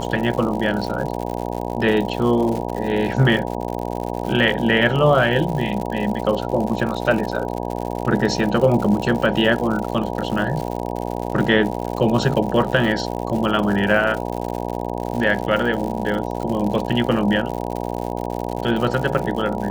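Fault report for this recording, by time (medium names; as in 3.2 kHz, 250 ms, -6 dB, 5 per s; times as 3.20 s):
buzz 60 Hz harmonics 16 -26 dBFS
crackle 120 per s -26 dBFS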